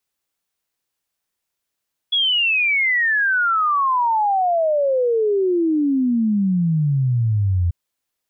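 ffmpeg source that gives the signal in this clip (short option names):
-f lavfi -i "aevalsrc='0.178*clip(min(t,5.59-t)/0.01,0,1)*sin(2*PI*3400*5.59/log(84/3400)*(exp(log(84/3400)*t/5.59)-1))':d=5.59:s=44100"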